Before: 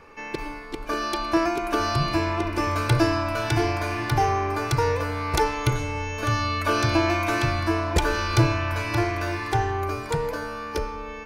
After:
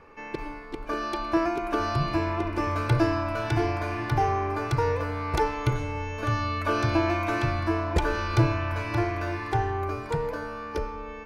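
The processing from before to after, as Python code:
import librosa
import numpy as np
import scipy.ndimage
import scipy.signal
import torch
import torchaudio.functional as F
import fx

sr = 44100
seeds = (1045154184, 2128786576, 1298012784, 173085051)

y = fx.high_shelf(x, sr, hz=3400.0, db=-10.5)
y = y * librosa.db_to_amplitude(-2.0)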